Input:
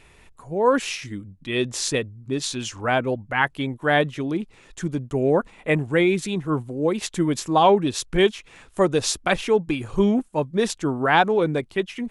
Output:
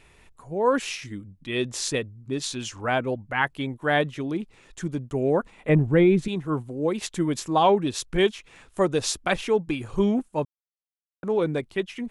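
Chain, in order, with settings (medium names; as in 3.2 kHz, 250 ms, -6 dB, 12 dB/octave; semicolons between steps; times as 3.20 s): 5.69–6.28 s: tilt EQ -3 dB/octave; 10.45–11.23 s: mute; trim -3 dB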